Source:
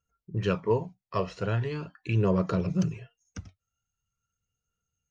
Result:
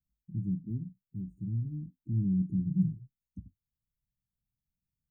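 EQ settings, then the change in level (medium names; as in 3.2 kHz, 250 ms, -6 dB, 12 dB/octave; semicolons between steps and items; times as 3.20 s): inverse Chebyshev band-stop 480–1400 Hz, stop band 40 dB; inverse Chebyshev band-stop 830–5300 Hz, stop band 60 dB; peaking EQ 90 Hz -9 dB 0.6 oct; 0.0 dB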